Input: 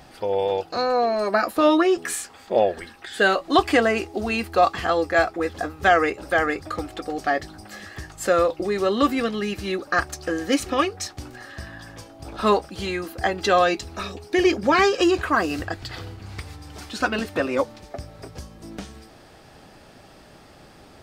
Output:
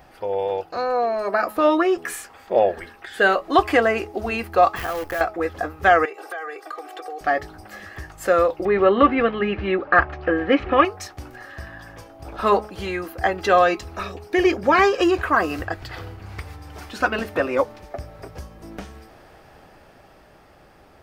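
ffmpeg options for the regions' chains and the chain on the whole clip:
-filter_complex "[0:a]asettb=1/sr,asplit=3[s0][s1][s2];[s0]atrim=end=4.764[s3];[s1]atrim=start=4.76:end=5.21,asetpts=PTS-STARTPTS,afade=t=in:d=0.004:c=qsin,afade=t=out:st=0.446:d=0.004:c=qsin,acompressor=threshold=0.0631:ratio=6:attack=3.2:release=140:knee=1:detection=peak,acrusher=bits=6:dc=4:mix=0:aa=0.000001[s4];[s2]atrim=start=5.206[s5];[s3][s4]acrossfade=d=0.004:c1=hsin:c2=qsin[s6];[s6][s5]acrossfade=d=0.004:c1=qsin:c2=hsin,asettb=1/sr,asplit=3[s7][s8][s9];[s7]atrim=end=6.054[s10];[s8]atrim=start=6.05:end=7.21,asetpts=PTS-STARTPTS,afade=t=in:d=0.004:c=qsin,afade=t=out:st=1.156:d=0.004:c=qsin,highpass=f=420:w=0.5412,highpass=f=420:w=1.3066,aecho=1:1:2.6:0.98,atrim=end_sample=51156,acompressor=threshold=0.0282:ratio=6:attack=3.2:release=140:knee=1:detection=peak[s11];[s9]atrim=start=7.206[s12];[s10][s11]acrossfade=d=0.004:c1=hsin:c2=qsin[s13];[s13][s12]acrossfade=d=0.004:c1=qsin:c2=hsin,asettb=1/sr,asplit=3[s14][s15][s16];[s14]atrim=end=8.654[s17];[s15]atrim=start=8.65:end=10.85,asetpts=PTS-STARTPTS,afade=t=in:d=0.004:c=qsin,afade=t=out:st=2.196:d=0.004:c=qsin,lowpass=f=3000:w=0.5412,lowpass=f=3000:w=1.3066,acontrast=26[s18];[s16]atrim=start=10.846[s19];[s17][s18]acrossfade=d=0.004:c1=hsin:c2=qsin[s20];[s20][s19]acrossfade=d=0.004:c1=qsin:c2=hsin,equalizer=f=125:t=o:w=1:g=-4,equalizer=f=250:t=o:w=1:g=-5,equalizer=f=4000:t=o:w=1:g=-7,equalizer=f=8000:t=o:w=1:g=-8,dynaudnorm=f=160:g=21:m=1.58,bandreject=f=212.1:t=h:w=4,bandreject=f=424.2:t=h:w=4,bandreject=f=636.3:t=h:w=4,bandreject=f=848.4:t=h:w=4,bandreject=f=1060.5:t=h:w=4,bandreject=f=1272.6:t=h:w=4"

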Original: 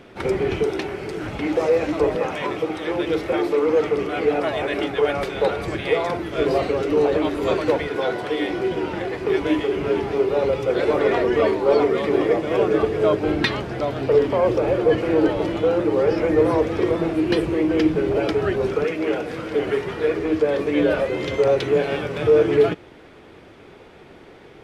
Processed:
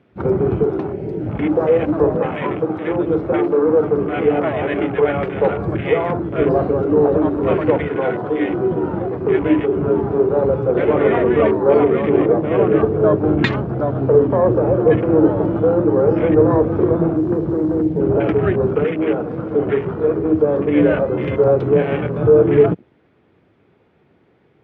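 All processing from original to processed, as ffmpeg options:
-filter_complex "[0:a]asettb=1/sr,asplit=3[s0][s1][s2];[s0]atrim=end=17.164[s3];[s1]atrim=start=17.16:end=18,asetpts=PTS-STARTPTS,afade=t=in:d=0.004:c=qsin,afade=t=out:st=0.836:d=0.004:c=qsin,lowpass=f=1800:w=0.5412,lowpass=f=1800:w=1.3066,acrossover=split=170|440[s4][s5][s6];[s4]acompressor=threshold=0.0178:ratio=4[s7];[s5]acompressor=threshold=0.0562:ratio=4[s8];[s6]acompressor=threshold=0.0398:ratio=4[s9];[s7][s8][s9]amix=inputs=3:normalize=0,acrusher=bits=5:mix=0:aa=0.5[s10];[s2]atrim=start=17.996[s11];[s3][s10]acrossfade=d=0.004:c1=hsin:c2=qsin[s12];[s12][s11]acrossfade=d=0.004:c1=qsin:c2=hsin,afwtdn=0.0316,highpass=100,bass=f=250:g=9,treble=f=4000:g=-12,volume=1.41"

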